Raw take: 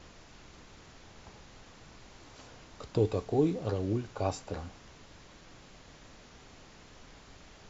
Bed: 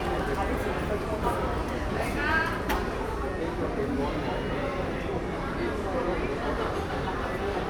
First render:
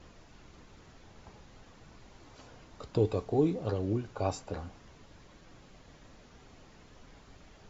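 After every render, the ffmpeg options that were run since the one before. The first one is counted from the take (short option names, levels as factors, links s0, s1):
-af "afftdn=nr=6:nf=-55"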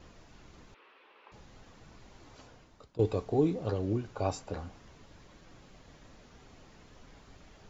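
-filter_complex "[0:a]asettb=1/sr,asplit=3[s0][s1][s2];[s0]atrim=end=0.744[s3];[s1]atrim=start=0.74:end=1.32,asetpts=PTS-STARTPTS,afade=t=in:d=0.004:c=qsin,afade=t=out:st=0.576:d=0.004:c=qsin,highpass=f=400:w=0.5412,highpass=f=400:w=1.3066,equalizer=f=690:t=q:w=4:g=-9,equalizer=f=1100:t=q:w=4:g=5,equalizer=f=2600:t=q:w=4:g=7,lowpass=f=3400:w=0.5412,lowpass=f=3400:w=1.3066[s4];[s2]atrim=start=1.316[s5];[s3][s4]acrossfade=d=0.004:c1=hsin:c2=qsin[s6];[s6][s5]acrossfade=d=0.004:c1=qsin:c2=hsin,asplit=2[s7][s8];[s7]atrim=end=2.99,asetpts=PTS-STARTPTS,afade=t=out:st=2.35:d=0.64:silence=0.0944061[s9];[s8]atrim=start=2.99,asetpts=PTS-STARTPTS,afade=t=in:d=0.004:c=hsin:silence=0.0944061[s10];[s9][s10]concat=n=2:v=0:a=1"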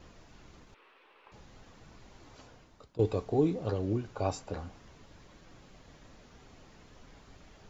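-filter_complex "[0:a]asettb=1/sr,asplit=3[s0][s1][s2];[s0]atrim=end=0.584[s3];[s1]atrim=start=0.58:end=1.32,asetpts=PTS-STARTPTS,afade=t=in:d=0.004:c=qsin,afade=t=out:st=0.736:d=0.004:c=qsin,aeval=exprs='if(lt(val(0),0),0.708*val(0),val(0))':c=same[s4];[s2]atrim=start=1.316[s5];[s3][s4]acrossfade=d=0.004:c1=hsin:c2=qsin[s6];[s6][s5]acrossfade=d=0.004:c1=qsin:c2=hsin"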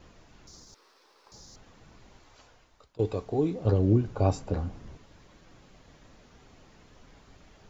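-filter_complex "[0:a]asettb=1/sr,asplit=3[s0][s1][s2];[s0]atrim=end=0.474[s3];[s1]atrim=start=0.47:end=1.56,asetpts=PTS-STARTPTS,afade=t=in:d=0.004:c=qsin,afade=t=out:st=1.086:d=0.004:c=qsin,highshelf=f=3800:t=q:w=3:g=11.5[s4];[s2]atrim=start=1.556[s5];[s3][s4]acrossfade=d=0.004:c1=hsin:c2=qsin[s6];[s6][s5]acrossfade=d=0.004:c1=qsin:c2=hsin,asettb=1/sr,asplit=3[s7][s8][s9];[s7]atrim=end=2.194[s10];[s8]atrim=start=2.19:end=3,asetpts=PTS-STARTPTS,afade=t=in:d=0.004:c=qsin,afade=t=out:st=0.806:d=0.004:c=qsin,equalizer=f=190:w=0.51:g=-9.5[s11];[s9]atrim=start=2.996[s12];[s10][s11]acrossfade=d=0.004:c1=hsin:c2=qsin[s13];[s13][s12]acrossfade=d=0.004:c1=qsin:c2=hsin,asettb=1/sr,asplit=3[s14][s15][s16];[s14]atrim=end=3.654[s17];[s15]atrim=start=3.65:end=4.97,asetpts=PTS-STARTPTS,afade=t=in:d=0.004:c=qsin,afade=t=out:st=1.316:d=0.004:c=qsin,lowshelf=f=480:g=11.5[s18];[s16]atrim=start=4.966[s19];[s17][s18]acrossfade=d=0.004:c1=hsin:c2=qsin[s20];[s20][s19]acrossfade=d=0.004:c1=qsin:c2=hsin"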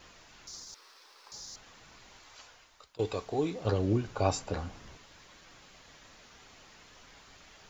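-af "tiltshelf=f=710:g=-7.5"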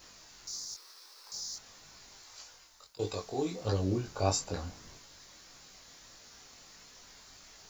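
-af "aexciter=amount=2.2:drive=7.8:freq=4200,flanger=delay=20:depth=2.7:speed=1.6"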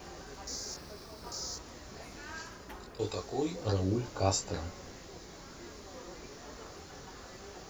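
-filter_complex "[1:a]volume=0.106[s0];[0:a][s0]amix=inputs=2:normalize=0"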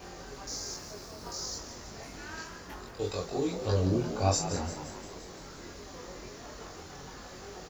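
-filter_complex "[0:a]asplit=2[s0][s1];[s1]adelay=22,volume=0.75[s2];[s0][s2]amix=inputs=2:normalize=0,asplit=2[s3][s4];[s4]asplit=7[s5][s6][s7][s8][s9][s10][s11];[s5]adelay=173,afreqshift=69,volume=0.282[s12];[s6]adelay=346,afreqshift=138,volume=0.166[s13];[s7]adelay=519,afreqshift=207,volume=0.0977[s14];[s8]adelay=692,afreqshift=276,volume=0.0582[s15];[s9]adelay=865,afreqshift=345,volume=0.0343[s16];[s10]adelay=1038,afreqshift=414,volume=0.0202[s17];[s11]adelay=1211,afreqshift=483,volume=0.0119[s18];[s12][s13][s14][s15][s16][s17][s18]amix=inputs=7:normalize=0[s19];[s3][s19]amix=inputs=2:normalize=0"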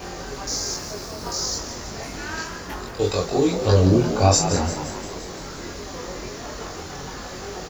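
-af "volume=3.76,alimiter=limit=0.708:level=0:latency=1"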